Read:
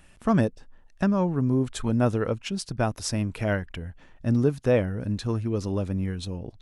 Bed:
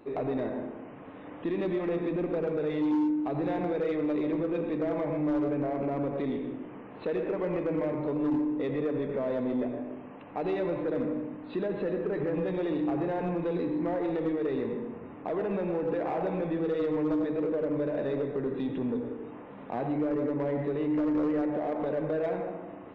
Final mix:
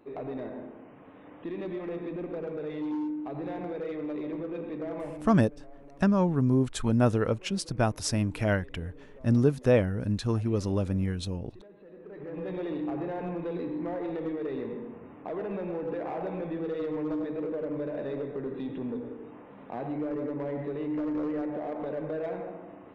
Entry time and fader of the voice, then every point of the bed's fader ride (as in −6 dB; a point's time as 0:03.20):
5.00 s, −0.5 dB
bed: 0:05.05 −5.5 dB
0:05.49 −21.5 dB
0:11.84 −21.5 dB
0:12.51 −3.5 dB